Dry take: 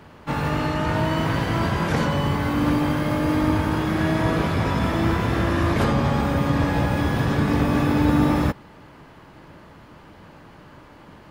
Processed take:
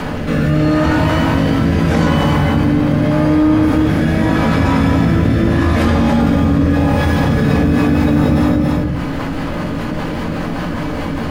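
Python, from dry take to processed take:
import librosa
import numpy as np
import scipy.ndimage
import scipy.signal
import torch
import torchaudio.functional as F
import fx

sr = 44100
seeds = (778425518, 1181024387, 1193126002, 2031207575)

p1 = fx.high_shelf(x, sr, hz=8400.0, db=-7.5, at=(2.43, 3.63))
p2 = fx.dmg_crackle(p1, sr, seeds[0], per_s=39.0, level_db=-51.0)
p3 = fx.rotary_switch(p2, sr, hz=0.8, then_hz=5.0, switch_at_s=6.95)
p4 = p3 + fx.echo_single(p3, sr, ms=279, db=-7.0, dry=0)
p5 = fx.room_shoebox(p4, sr, seeds[1], volume_m3=290.0, walls='furnished', distance_m=2.0)
p6 = fx.env_flatten(p5, sr, amount_pct=70)
y = p6 * 10.0 ** (-1.5 / 20.0)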